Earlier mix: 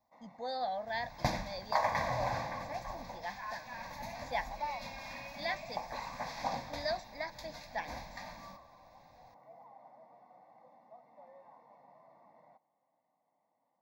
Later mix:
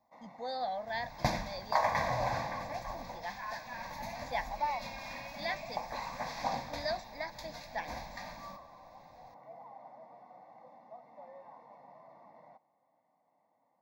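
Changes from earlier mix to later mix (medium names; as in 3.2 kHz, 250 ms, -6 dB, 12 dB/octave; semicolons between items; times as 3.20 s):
first sound +5.0 dB; reverb: on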